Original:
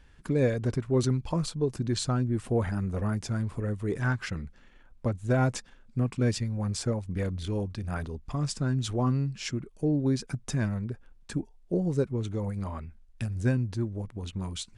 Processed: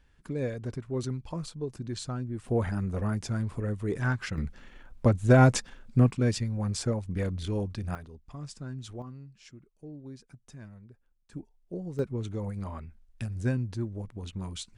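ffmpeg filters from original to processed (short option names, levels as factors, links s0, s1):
-af "asetnsamples=n=441:p=0,asendcmd='2.48 volume volume -0.5dB;4.38 volume volume 6.5dB;6.11 volume volume 0dB;7.95 volume volume -11dB;9.02 volume volume -18dB;11.33 volume volume -9.5dB;11.99 volume volume -2.5dB',volume=0.447"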